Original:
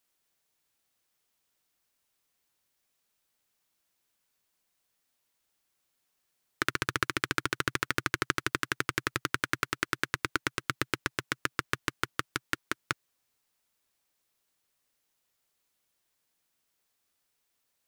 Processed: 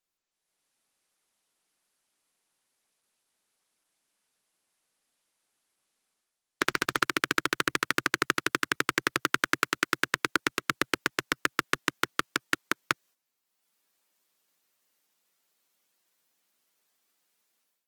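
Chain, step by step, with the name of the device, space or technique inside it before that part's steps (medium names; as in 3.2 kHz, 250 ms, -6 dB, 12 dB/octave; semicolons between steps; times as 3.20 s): video call (high-pass 160 Hz 24 dB/octave; level rider gain up to 14.5 dB; gate -56 dBFS, range -10 dB; trim -1 dB; Opus 20 kbps 48 kHz)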